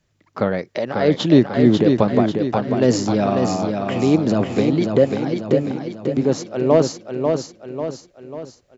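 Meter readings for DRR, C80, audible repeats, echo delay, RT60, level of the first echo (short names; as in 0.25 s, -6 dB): none, none, 5, 0.543 s, none, -5.0 dB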